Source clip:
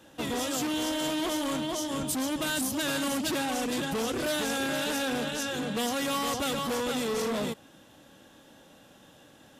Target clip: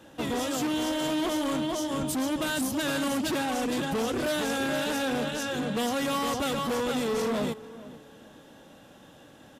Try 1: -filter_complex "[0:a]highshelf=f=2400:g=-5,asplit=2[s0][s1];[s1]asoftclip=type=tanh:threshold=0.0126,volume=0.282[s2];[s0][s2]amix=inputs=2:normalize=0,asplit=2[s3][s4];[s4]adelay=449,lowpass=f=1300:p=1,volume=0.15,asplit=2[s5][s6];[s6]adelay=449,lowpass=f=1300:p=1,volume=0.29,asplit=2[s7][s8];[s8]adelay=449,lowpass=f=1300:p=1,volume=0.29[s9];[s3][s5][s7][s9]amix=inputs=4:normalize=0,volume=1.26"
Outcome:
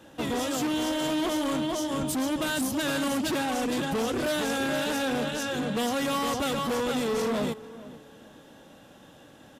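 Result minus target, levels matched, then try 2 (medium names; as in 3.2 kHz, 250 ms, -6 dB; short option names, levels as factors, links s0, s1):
saturation: distortion -4 dB
-filter_complex "[0:a]highshelf=f=2400:g=-5,asplit=2[s0][s1];[s1]asoftclip=type=tanh:threshold=0.00335,volume=0.282[s2];[s0][s2]amix=inputs=2:normalize=0,asplit=2[s3][s4];[s4]adelay=449,lowpass=f=1300:p=1,volume=0.15,asplit=2[s5][s6];[s6]adelay=449,lowpass=f=1300:p=1,volume=0.29,asplit=2[s7][s8];[s8]adelay=449,lowpass=f=1300:p=1,volume=0.29[s9];[s3][s5][s7][s9]amix=inputs=4:normalize=0,volume=1.26"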